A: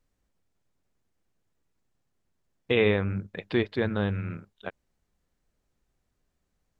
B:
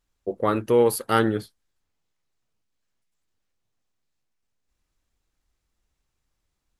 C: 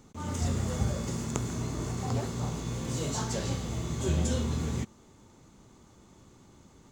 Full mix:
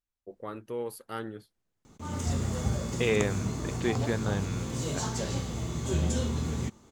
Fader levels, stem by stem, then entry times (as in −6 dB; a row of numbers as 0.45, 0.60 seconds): −4.0, −16.5, 0.0 decibels; 0.30, 0.00, 1.85 seconds